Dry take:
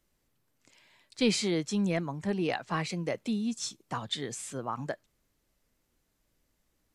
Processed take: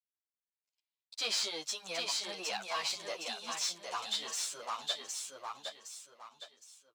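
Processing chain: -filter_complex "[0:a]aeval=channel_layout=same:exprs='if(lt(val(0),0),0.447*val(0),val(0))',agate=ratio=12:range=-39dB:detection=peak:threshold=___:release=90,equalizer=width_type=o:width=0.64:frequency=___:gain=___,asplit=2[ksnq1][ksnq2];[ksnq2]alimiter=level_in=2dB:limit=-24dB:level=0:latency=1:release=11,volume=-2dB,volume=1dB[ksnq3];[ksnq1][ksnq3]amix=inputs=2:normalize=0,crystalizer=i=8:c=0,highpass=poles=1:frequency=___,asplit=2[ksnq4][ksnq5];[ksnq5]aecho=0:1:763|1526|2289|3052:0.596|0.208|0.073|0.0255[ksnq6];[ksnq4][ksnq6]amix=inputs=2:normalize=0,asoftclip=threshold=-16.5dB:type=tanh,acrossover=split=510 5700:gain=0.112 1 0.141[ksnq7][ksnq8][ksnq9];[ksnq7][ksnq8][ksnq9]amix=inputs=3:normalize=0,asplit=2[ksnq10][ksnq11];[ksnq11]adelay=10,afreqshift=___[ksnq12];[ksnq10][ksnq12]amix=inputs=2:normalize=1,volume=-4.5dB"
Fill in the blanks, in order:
-60dB, 1900, -9, 340, 0.64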